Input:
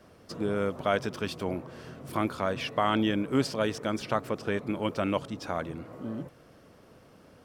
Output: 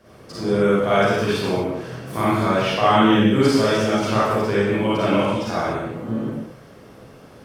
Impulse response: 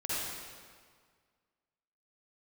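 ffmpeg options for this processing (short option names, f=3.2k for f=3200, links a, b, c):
-filter_complex "[1:a]atrim=start_sample=2205,afade=t=out:st=0.45:d=0.01,atrim=end_sample=20286,asetrate=57330,aresample=44100[a];[0:a][a]afir=irnorm=-1:irlink=0,volume=7.5dB"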